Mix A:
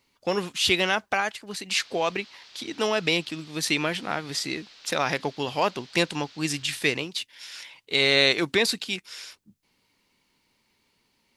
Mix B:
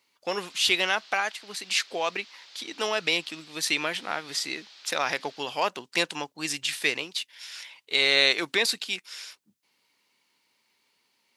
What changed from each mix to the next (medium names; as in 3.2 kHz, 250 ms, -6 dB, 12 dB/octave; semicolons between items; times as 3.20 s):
background: entry -1.20 s; master: add high-pass 650 Hz 6 dB/octave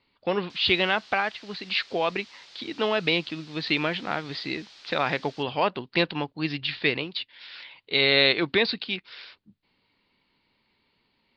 speech: add steep low-pass 4.6 kHz 72 dB/octave; master: remove high-pass 650 Hz 6 dB/octave